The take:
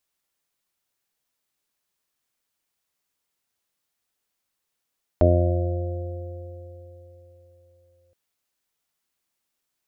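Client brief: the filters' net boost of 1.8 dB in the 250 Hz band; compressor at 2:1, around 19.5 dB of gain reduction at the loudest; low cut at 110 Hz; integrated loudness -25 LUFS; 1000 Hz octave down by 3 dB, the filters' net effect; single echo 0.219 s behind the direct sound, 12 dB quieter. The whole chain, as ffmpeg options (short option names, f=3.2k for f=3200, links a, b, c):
-af "highpass=110,equalizer=f=250:t=o:g=3.5,equalizer=f=1k:t=o:g=-6.5,acompressor=threshold=-51dB:ratio=2,aecho=1:1:219:0.251,volume=21dB"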